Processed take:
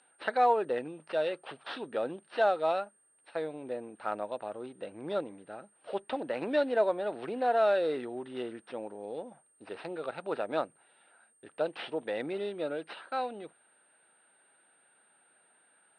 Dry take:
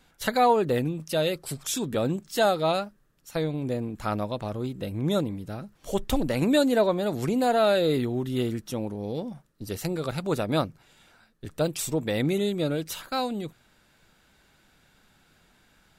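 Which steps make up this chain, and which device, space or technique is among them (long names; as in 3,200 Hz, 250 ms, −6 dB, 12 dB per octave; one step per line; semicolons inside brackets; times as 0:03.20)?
toy sound module (linearly interpolated sample-rate reduction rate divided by 4×; switching amplifier with a slow clock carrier 8,700 Hz; loudspeaker in its box 530–3,900 Hz, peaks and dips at 1,100 Hz −6 dB, 2,200 Hz −7 dB, 3,300 Hz −5 dB)
level −1 dB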